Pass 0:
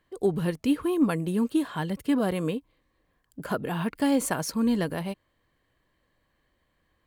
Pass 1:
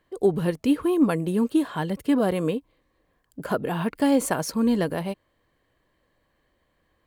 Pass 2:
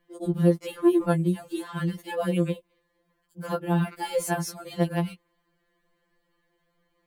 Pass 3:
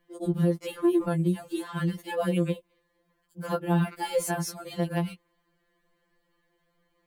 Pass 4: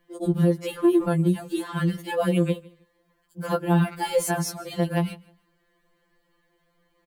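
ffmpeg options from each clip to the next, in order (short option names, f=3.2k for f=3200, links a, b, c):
-af "equalizer=f=520:w=0.78:g=4,volume=1dB"
-af "afftfilt=real='re*2.83*eq(mod(b,8),0)':imag='im*2.83*eq(mod(b,8),0)':win_size=2048:overlap=0.75"
-af "alimiter=limit=-15.5dB:level=0:latency=1:release=92"
-af "aecho=1:1:156|312:0.0708|0.0177,volume=4dB"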